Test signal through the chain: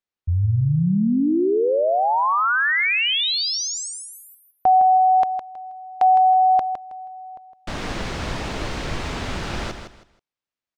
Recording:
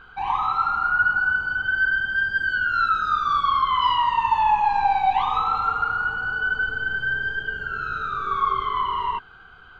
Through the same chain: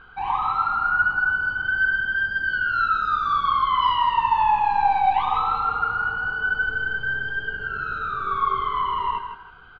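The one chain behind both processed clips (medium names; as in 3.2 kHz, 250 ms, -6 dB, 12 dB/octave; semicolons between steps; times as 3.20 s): distance through air 120 m; on a send: feedback delay 160 ms, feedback 25%, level -8.5 dB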